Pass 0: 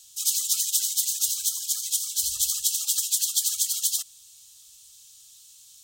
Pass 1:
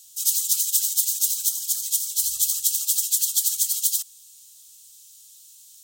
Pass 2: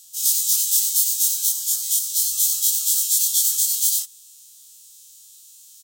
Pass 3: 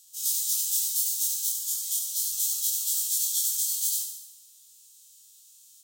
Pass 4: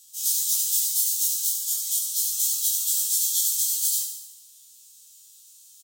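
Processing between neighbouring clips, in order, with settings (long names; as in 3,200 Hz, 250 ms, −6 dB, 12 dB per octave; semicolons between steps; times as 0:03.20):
high-shelf EQ 7,800 Hz +11.5 dB; level −4 dB
every bin's largest magnitude spread in time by 60 ms; comb filter 5.5 ms, depth 36%; level −2.5 dB
feedback echo with a high-pass in the loop 71 ms, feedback 58%, high-pass 190 Hz, level −7 dB; level −8.5 dB
double-tracking delay 13 ms −4.5 dB; level +2 dB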